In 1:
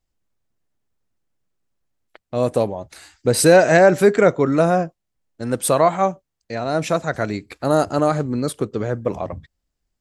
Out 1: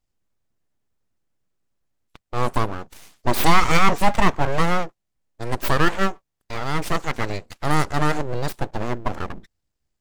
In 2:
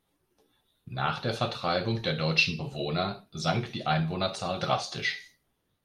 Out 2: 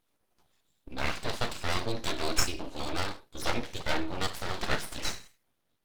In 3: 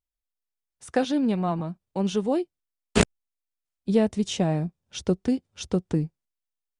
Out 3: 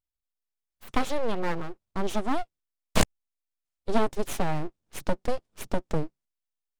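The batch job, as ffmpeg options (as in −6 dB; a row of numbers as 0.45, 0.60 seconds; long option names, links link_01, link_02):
-af "aeval=exprs='abs(val(0))':channel_layout=same"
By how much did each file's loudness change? −4.5, −4.0, −5.0 LU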